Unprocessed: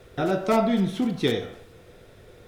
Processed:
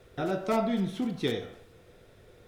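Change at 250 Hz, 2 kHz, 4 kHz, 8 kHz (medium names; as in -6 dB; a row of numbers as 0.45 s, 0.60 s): -6.0 dB, -6.0 dB, -6.0 dB, -6.0 dB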